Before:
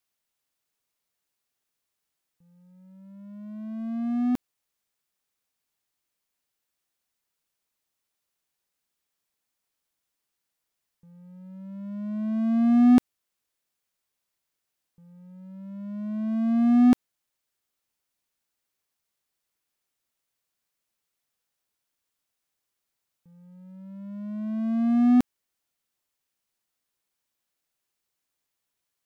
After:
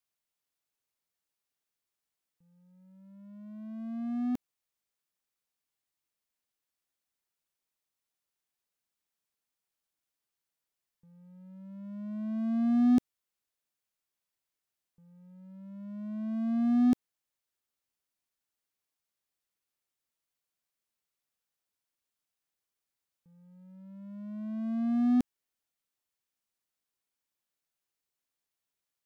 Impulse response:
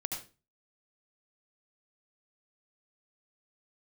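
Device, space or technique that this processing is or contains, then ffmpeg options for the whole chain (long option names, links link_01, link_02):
one-band saturation: -filter_complex "[0:a]acrossover=split=480|2800[link_01][link_02][link_03];[link_02]asoftclip=type=tanh:threshold=-33.5dB[link_04];[link_01][link_04][link_03]amix=inputs=3:normalize=0,volume=-6.5dB"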